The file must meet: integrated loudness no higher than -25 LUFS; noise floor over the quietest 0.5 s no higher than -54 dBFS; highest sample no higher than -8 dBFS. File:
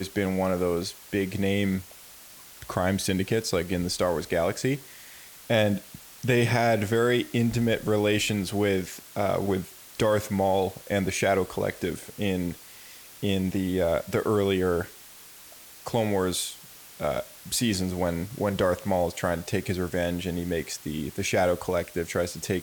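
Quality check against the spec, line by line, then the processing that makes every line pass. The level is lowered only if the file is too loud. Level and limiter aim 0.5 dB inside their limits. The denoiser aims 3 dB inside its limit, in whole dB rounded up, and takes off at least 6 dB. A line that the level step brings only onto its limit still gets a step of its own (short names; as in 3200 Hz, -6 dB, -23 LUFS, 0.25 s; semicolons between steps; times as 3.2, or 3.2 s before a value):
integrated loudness -27.0 LUFS: OK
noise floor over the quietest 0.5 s -48 dBFS: fail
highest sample -9.5 dBFS: OK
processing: denoiser 9 dB, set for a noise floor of -48 dBFS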